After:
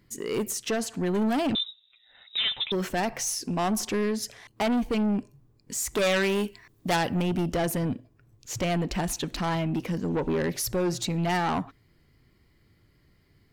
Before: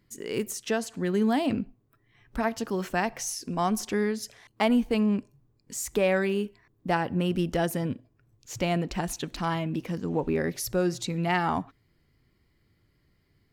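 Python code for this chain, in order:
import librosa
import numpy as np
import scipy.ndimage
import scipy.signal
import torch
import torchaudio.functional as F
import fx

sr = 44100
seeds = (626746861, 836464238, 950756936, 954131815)

y = 10.0 ** (-27.0 / 20.0) * np.tanh(x / 10.0 ** (-27.0 / 20.0))
y = fx.freq_invert(y, sr, carrier_hz=3800, at=(1.55, 2.72))
y = fx.high_shelf(y, sr, hz=2100.0, db=11.0, at=(5.97, 7.22))
y = y * 10.0 ** (5.0 / 20.0)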